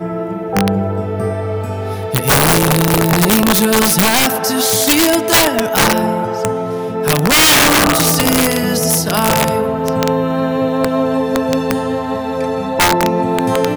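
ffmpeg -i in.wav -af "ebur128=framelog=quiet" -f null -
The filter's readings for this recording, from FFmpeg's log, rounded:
Integrated loudness:
  I:         -13.4 LUFS
  Threshold: -23.4 LUFS
Loudness range:
  LRA:         4.4 LU
  Threshold: -32.9 LUFS
  LRA low:   -15.9 LUFS
  LRA high:  -11.5 LUFS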